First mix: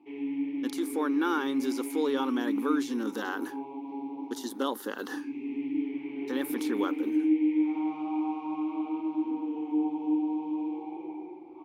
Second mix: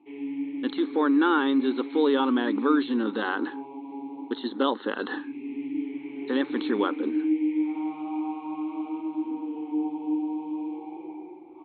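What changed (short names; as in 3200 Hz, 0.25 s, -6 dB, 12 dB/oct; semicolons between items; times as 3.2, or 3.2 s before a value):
speech +6.0 dB; master: add brick-wall FIR low-pass 4300 Hz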